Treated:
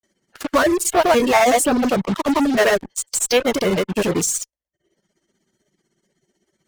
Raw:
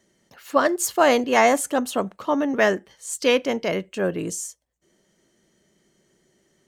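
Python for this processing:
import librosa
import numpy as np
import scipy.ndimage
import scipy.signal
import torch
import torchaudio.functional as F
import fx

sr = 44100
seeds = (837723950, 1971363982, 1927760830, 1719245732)

p1 = fx.spec_quant(x, sr, step_db=15)
p2 = fx.granulator(p1, sr, seeds[0], grain_ms=100.0, per_s=16.0, spray_ms=100.0, spread_st=0)
p3 = fx.fuzz(p2, sr, gain_db=42.0, gate_db=-41.0)
p4 = p2 + (p3 * 10.0 ** (-5.0 / 20.0))
y = fx.dereverb_blind(p4, sr, rt60_s=0.58)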